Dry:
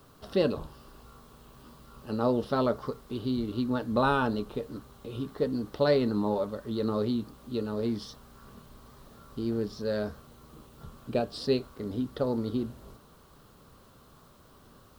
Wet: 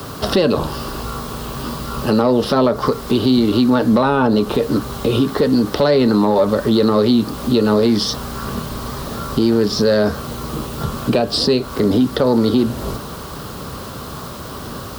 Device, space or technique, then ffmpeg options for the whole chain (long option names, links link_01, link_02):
mastering chain: -filter_complex "[0:a]highpass=45,equalizer=frequency=5000:width_type=o:width=0.38:gain=3,acrossover=split=170|880[link_01][link_02][link_03];[link_01]acompressor=threshold=-48dB:ratio=4[link_04];[link_02]acompressor=threshold=-32dB:ratio=4[link_05];[link_03]acompressor=threshold=-41dB:ratio=4[link_06];[link_04][link_05][link_06]amix=inputs=3:normalize=0,acompressor=threshold=-43dB:ratio=1.5,asoftclip=type=tanh:threshold=-28dB,alimiter=level_in=32dB:limit=-1dB:release=50:level=0:latency=1,volume=-5.5dB"